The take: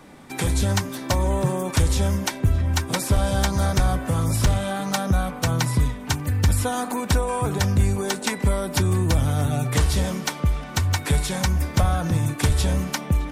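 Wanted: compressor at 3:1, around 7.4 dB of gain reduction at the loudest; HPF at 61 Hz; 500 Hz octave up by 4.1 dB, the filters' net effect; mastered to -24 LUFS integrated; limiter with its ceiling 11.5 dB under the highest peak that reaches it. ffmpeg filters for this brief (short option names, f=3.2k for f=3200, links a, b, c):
-af "highpass=61,equalizer=f=500:t=o:g=5,acompressor=threshold=-25dB:ratio=3,volume=8dB,alimiter=limit=-15dB:level=0:latency=1"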